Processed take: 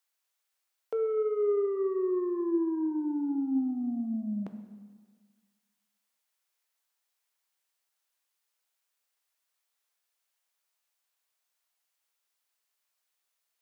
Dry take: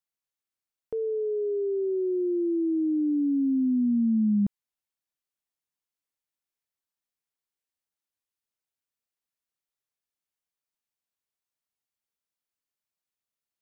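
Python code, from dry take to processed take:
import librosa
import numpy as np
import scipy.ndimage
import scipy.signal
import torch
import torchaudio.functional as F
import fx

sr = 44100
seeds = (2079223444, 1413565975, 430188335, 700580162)

y = scipy.signal.sosfilt(scipy.signal.butter(2, 610.0, 'highpass', fs=sr, output='sos'), x)
y = 10.0 ** (-34.5 / 20.0) * np.tanh(y / 10.0 ** (-34.5 / 20.0))
y = fx.rev_plate(y, sr, seeds[0], rt60_s=1.6, hf_ratio=0.75, predelay_ms=0, drr_db=6.5)
y = y * librosa.db_to_amplitude(9.0)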